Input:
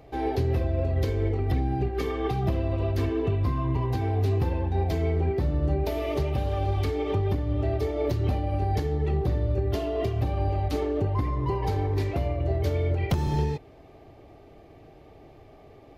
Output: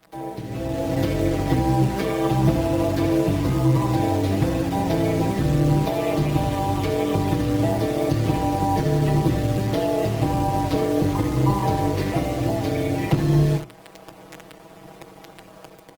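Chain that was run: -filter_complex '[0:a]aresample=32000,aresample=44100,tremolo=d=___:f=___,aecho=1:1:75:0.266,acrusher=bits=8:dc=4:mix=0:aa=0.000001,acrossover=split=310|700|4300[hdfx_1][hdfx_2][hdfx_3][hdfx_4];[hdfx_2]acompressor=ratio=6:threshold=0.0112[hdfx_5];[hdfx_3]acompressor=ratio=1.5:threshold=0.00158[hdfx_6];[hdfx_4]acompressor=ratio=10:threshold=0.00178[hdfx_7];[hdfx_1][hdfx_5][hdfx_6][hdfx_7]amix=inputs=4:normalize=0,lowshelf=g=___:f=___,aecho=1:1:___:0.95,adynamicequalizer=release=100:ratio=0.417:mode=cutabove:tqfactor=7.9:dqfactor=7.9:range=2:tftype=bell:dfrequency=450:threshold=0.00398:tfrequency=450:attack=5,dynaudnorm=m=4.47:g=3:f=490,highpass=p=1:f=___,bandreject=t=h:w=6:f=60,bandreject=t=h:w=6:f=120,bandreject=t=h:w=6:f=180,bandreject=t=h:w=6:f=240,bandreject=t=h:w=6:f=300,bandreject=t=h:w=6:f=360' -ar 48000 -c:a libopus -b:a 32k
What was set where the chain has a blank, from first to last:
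0.857, 190, -3.5, 300, 6.2, 53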